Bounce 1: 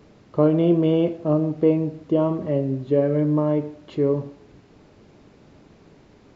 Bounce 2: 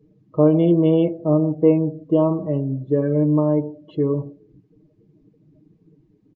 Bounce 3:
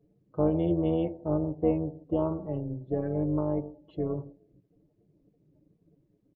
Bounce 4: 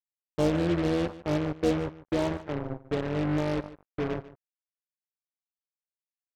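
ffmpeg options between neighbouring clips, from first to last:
ffmpeg -i in.wav -af "afftdn=noise_reduction=24:noise_floor=-41,bandreject=frequency=1400:width=12,aecho=1:1:6.4:0.81,volume=-2dB" out.wav
ffmpeg -i in.wav -af "tremolo=f=250:d=0.571,volume=-8dB" out.wav
ffmpeg -i in.wav -af "acrusher=bits=4:mix=0:aa=0.5,aecho=1:1:147:0.141" out.wav

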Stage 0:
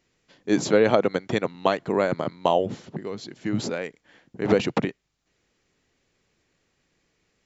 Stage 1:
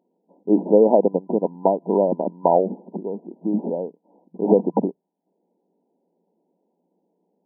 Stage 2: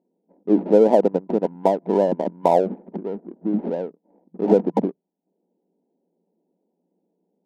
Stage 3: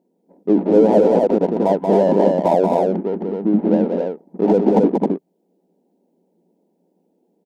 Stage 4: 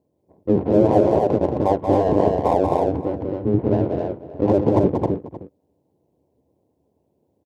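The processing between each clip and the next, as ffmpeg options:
ffmpeg -i in.wav -af "afftfilt=real='re*between(b*sr/4096,170,1000)':imag='im*between(b*sr/4096,170,1000)':win_size=4096:overlap=0.75,volume=4.5dB" out.wav
ffmpeg -i in.wav -af "adynamicsmooth=sensitivity=5.5:basefreq=760" out.wav
ffmpeg -i in.wav -filter_complex "[0:a]alimiter=limit=-12dB:level=0:latency=1:release=19,asplit=2[link_01][link_02];[link_02]aecho=0:1:183.7|265.3:0.562|0.708[link_03];[link_01][link_03]amix=inputs=2:normalize=0,volume=6dB" out.wav
ffmpeg -i in.wav -filter_complex "[0:a]asplit=2[link_01][link_02];[link_02]adelay=309,volume=-14dB,highshelf=frequency=4000:gain=-6.95[link_03];[link_01][link_03]amix=inputs=2:normalize=0,aeval=exprs='val(0)*sin(2*PI*100*n/s)':channel_layout=same" out.wav

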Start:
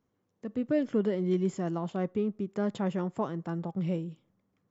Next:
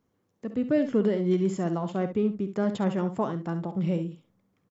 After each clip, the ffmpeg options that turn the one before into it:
ffmpeg -i in.wav -af "aecho=1:1:52|67:0.168|0.282,volume=3.5dB" out.wav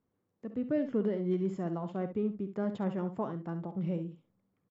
ffmpeg -i in.wav -af "lowpass=frequency=1900:poles=1,volume=-6.5dB" out.wav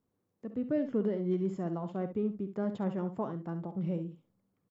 ffmpeg -i in.wav -af "equalizer=frequency=2300:width_type=o:width=1.6:gain=-2.5" out.wav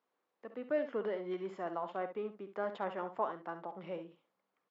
ffmpeg -i in.wav -af "highpass=770,lowpass=3200,volume=7dB" out.wav

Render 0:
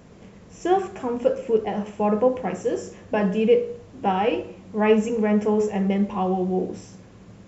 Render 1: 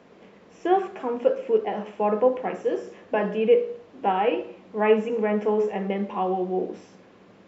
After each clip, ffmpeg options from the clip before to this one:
ffmpeg -i in.wav -filter_complex "[0:a]acrossover=split=230 4800:gain=0.1 1 0.112[link_01][link_02][link_03];[link_01][link_02][link_03]amix=inputs=3:normalize=0,acrossover=split=3600[link_04][link_05];[link_05]acompressor=threshold=-55dB:ratio=4:attack=1:release=60[link_06];[link_04][link_06]amix=inputs=2:normalize=0" out.wav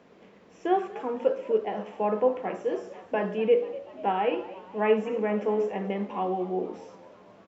ffmpeg -i in.wav -filter_complex "[0:a]asplit=6[link_01][link_02][link_03][link_04][link_05][link_06];[link_02]adelay=243,afreqshift=77,volume=-18.5dB[link_07];[link_03]adelay=486,afreqshift=154,volume=-23.2dB[link_08];[link_04]adelay=729,afreqshift=231,volume=-28dB[link_09];[link_05]adelay=972,afreqshift=308,volume=-32.7dB[link_10];[link_06]adelay=1215,afreqshift=385,volume=-37.4dB[link_11];[link_01][link_07][link_08][link_09][link_10][link_11]amix=inputs=6:normalize=0,volume=-3.5dB" out.wav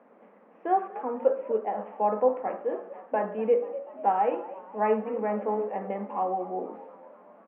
ffmpeg -i in.wav -af "highpass=frequency=220:width=0.5412,highpass=frequency=220:width=1.3066,equalizer=frequency=230:width_type=q:width=4:gain=6,equalizer=frequency=370:width_type=q:width=4:gain=-4,equalizer=frequency=560:width_type=q:width=4:gain=6,equalizer=frequency=820:width_type=q:width=4:gain=7,equalizer=frequency=1200:width_type=q:width=4:gain=5,lowpass=frequency=2100:width=0.5412,lowpass=frequency=2100:width=1.3066,volume=-3.5dB" out.wav

